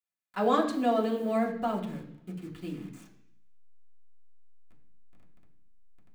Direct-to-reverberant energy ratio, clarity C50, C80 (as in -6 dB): -3.0 dB, 9.0 dB, 11.0 dB